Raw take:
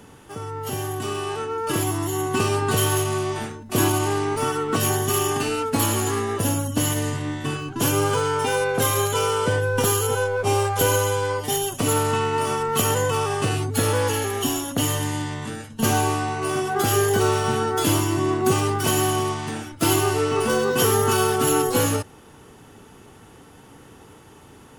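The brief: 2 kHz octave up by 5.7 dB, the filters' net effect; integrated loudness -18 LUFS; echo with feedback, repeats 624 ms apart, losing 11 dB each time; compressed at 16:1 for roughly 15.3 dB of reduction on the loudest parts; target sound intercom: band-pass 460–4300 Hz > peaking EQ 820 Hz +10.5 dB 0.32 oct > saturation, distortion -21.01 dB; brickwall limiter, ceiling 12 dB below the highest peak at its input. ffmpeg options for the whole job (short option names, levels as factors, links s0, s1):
-af "equalizer=f=2000:t=o:g=8,acompressor=threshold=0.0316:ratio=16,alimiter=level_in=1.88:limit=0.0631:level=0:latency=1,volume=0.531,highpass=460,lowpass=4300,equalizer=f=820:t=o:w=0.32:g=10.5,aecho=1:1:624|1248|1872:0.282|0.0789|0.0221,asoftclip=threshold=0.0355,volume=11.2"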